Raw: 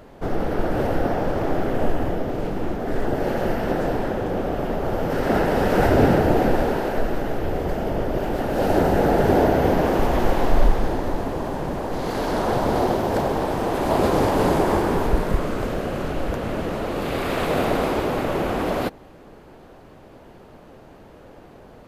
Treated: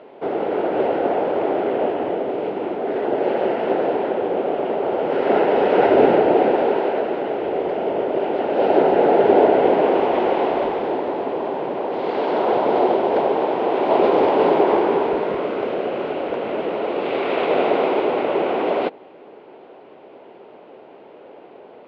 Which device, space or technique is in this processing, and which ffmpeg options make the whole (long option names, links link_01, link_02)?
phone earpiece: -af "highpass=390,equalizer=frequency=400:width_type=q:width=4:gain=5,equalizer=frequency=1200:width_type=q:width=4:gain=-6,equalizer=frequency=1700:width_type=q:width=4:gain=-8,lowpass=frequency=3100:width=0.5412,lowpass=frequency=3100:width=1.3066,volume=5dB"